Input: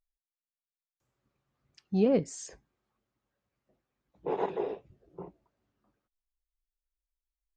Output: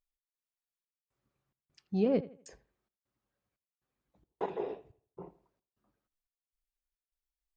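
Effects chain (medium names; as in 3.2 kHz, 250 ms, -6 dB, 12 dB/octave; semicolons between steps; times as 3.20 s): trance gate "xx..xxxxxx...xxx" 177 bpm -60 dB; on a send: bucket-brigade echo 82 ms, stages 2048, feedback 33%, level -17.5 dB; on the sum: trim -3.5 dB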